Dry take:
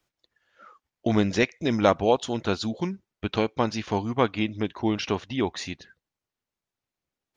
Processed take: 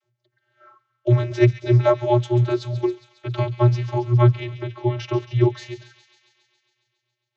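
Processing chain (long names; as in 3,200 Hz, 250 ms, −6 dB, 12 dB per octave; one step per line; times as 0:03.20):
delay with a high-pass on its return 137 ms, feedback 71%, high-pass 2,300 Hz, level −11 dB
channel vocoder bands 32, square 121 Hz
level +7 dB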